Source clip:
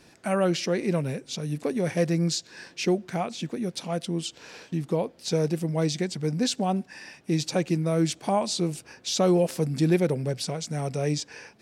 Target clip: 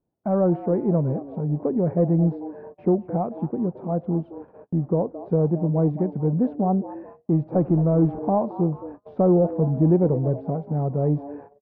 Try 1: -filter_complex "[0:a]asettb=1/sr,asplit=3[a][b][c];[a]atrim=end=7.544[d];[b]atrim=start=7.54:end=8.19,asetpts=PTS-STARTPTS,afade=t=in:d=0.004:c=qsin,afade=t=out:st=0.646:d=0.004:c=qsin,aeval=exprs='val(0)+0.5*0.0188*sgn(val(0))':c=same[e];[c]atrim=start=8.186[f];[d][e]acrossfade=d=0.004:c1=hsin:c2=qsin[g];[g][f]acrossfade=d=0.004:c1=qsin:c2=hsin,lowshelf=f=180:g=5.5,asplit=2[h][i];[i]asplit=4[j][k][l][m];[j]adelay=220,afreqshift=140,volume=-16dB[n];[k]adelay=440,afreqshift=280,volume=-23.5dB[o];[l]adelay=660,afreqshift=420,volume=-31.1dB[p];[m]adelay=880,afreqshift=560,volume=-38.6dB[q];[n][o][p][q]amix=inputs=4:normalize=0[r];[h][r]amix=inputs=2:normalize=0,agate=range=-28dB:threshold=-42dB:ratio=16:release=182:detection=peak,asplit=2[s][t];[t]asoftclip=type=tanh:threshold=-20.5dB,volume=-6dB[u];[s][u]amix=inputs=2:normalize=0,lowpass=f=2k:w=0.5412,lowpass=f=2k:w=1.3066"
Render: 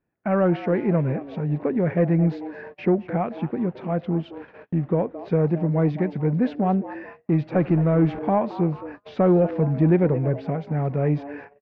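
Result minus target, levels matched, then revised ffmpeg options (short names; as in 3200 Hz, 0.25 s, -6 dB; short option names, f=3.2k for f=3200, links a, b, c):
2000 Hz band +17.5 dB
-filter_complex "[0:a]asettb=1/sr,asplit=3[a][b][c];[a]atrim=end=7.544[d];[b]atrim=start=7.54:end=8.19,asetpts=PTS-STARTPTS,afade=t=in:d=0.004:c=qsin,afade=t=out:st=0.646:d=0.004:c=qsin,aeval=exprs='val(0)+0.5*0.0188*sgn(val(0))':c=same[e];[c]atrim=start=8.186[f];[d][e]acrossfade=d=0.004:c1=hsin:c2=qsin[g];[g][f]acrossfade=d=0.004:c1=qsin:c2=hsin,lowshelf=f=180:g=5.5,asplit=2[h][i];[i]asplit=4[j][k][l][m];[j]adelay=220,afreqshift=140,volume=-16dB[n];[k]adelay=440,afreqshift=280,volume=-23.5dB[o];[l]adelay=660,afreqshift=420,volume=-31.1dB[p];[m]adelay=880,afreqshift=560,volume=-38.6dB[q];[n][o][p][q]amix=inputs=4:normalize=0[r];[h][r]amix=inputs=2:normalize=0,agate=range=-28dB:threshold=-42dB:ratio=16:release=182:detection=peak,asplit=2[s][t];[t]asoftclip=type=tanh:threshold=-20.5dB,volume=-6dB[u];[s][u]amix=inputs=2:normalize=0,lowpass=f=970:w=0.5412,lowpass=f=970:w=1.3066"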